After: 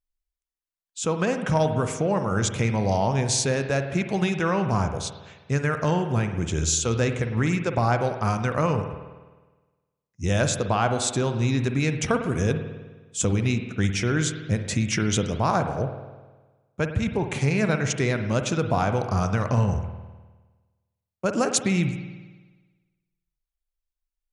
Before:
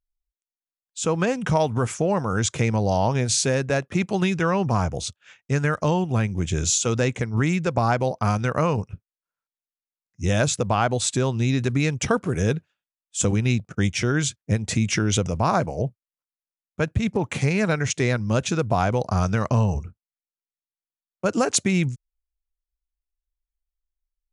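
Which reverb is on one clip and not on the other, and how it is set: spring tank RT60 1.3 s, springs 51 ms, chirp 65 ms, DRR 7 dB; gain -2 dB

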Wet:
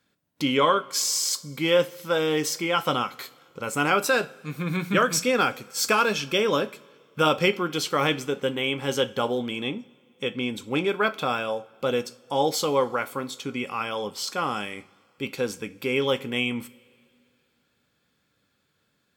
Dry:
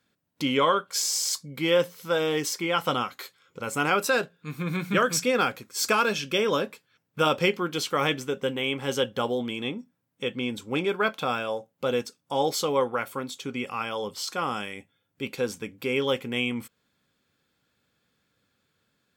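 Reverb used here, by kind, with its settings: two-slope reverb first 0.41 s, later 2.4 s, from -18 dB, DRR 14 dB; gain +1.5 dB

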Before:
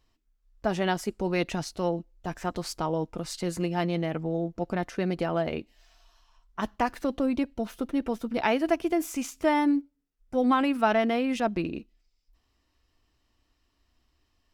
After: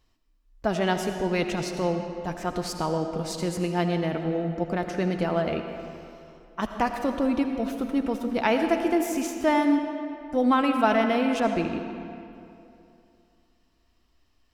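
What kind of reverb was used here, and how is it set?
digital reverb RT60 2.7 s, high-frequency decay 0.7×, pre-delay 40 ms, DRR 5.5 dB; gain +1.5 dB

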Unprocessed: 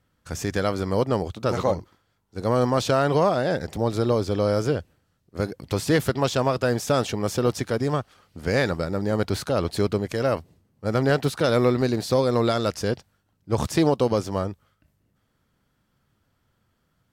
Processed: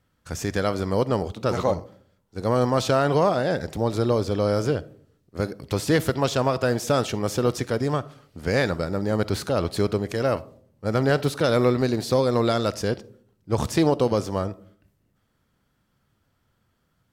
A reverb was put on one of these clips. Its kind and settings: digital reverb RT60 0.56 s, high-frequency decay 0.3×, pre-delay 10 ms, DRR 18 dB

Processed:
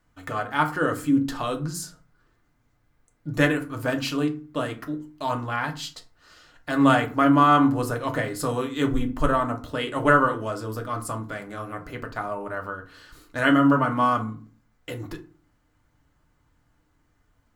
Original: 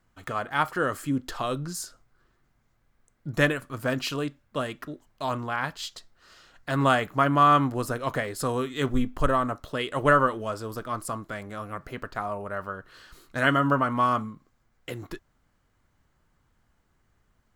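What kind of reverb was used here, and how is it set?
FDN reverb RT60 0.36 s, low-frequency decay 1.55×, high-frequency decay 0.6×, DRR 3.5 dB

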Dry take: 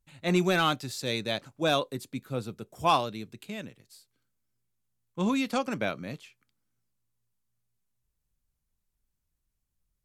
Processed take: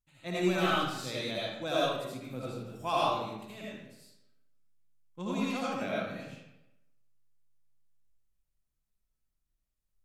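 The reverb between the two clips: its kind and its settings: digital reverb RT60 0.9 s, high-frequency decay 0.75×, pre-delay 40 ms, DRR -7 dB; gain -11 dB

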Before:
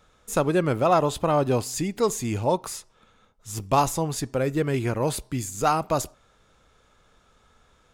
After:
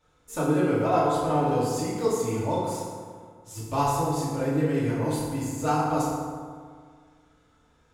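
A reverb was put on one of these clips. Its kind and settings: FDN reverb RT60 1.9 s, low-frequency decay 1.05×, high-frequency decay 0.5×, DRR -9.5 dB; gain -13 dB

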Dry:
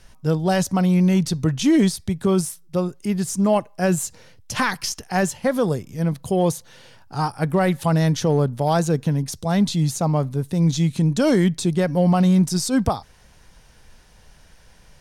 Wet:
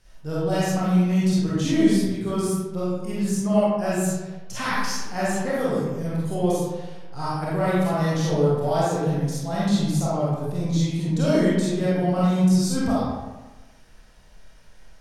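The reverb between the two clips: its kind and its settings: digital reverb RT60 1.2 s, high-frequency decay 0.6×, pre-delay 5 ms, DRR -9 dB; gain -11.5 dB

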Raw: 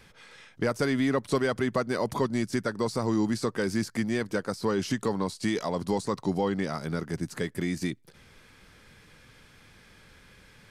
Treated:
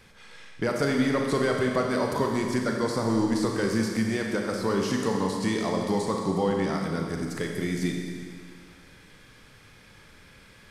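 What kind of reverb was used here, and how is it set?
Schroeder reverb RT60 2 s, combs from 28 ms, DRR 1 dB

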